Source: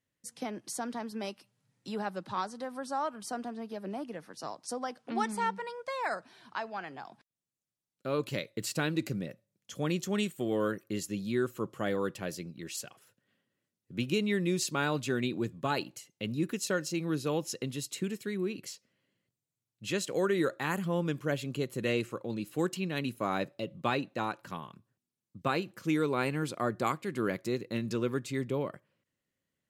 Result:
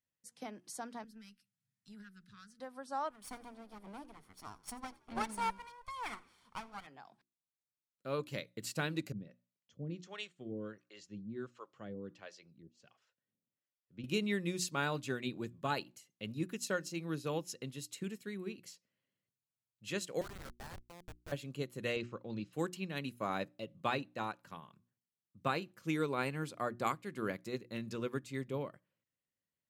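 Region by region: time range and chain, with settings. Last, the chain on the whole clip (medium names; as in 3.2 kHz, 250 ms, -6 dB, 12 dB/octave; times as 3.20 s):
1.04–2.60 s: elliptic band-stop 220–1500 Hz + peaking EQ 2.9 kHz -3.5 dB 1.3 oct + valve stage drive 35 dB, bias 0.55
3.10–6.87 s: comb filter that takes the minimum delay 0.9 ms + peaking EQ 9.6 kHz +7 dB 0.42 oct + frequency-shifting echo 86 ms, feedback 46%, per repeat +60 Hz, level -20 dB
9.12–14.04 s: low-pass 6 kHz 24 dB/octave + harmonic tremolo 1.4 Hz, depth 100%, crossover 460 Hz
20.21–21.32 s: high-pass 660 Hz 24 dB/octave + peaking EQ 9.6 kHz -8 dB 0.68 oct + Schmitt trigger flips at -34.5 dBFS
21.96–22.53 s: low-pass 5.8 kHz 24 dB/octave + bass shelf 190 Hz +5 dB
whole clip: peaking EQ 350 Hz -3 dB 0.85 oct; hum notches 60/120/180/240/300/360 Hz; upward expansion 1.5:1, over -43 dBFS; trim -2.5 dB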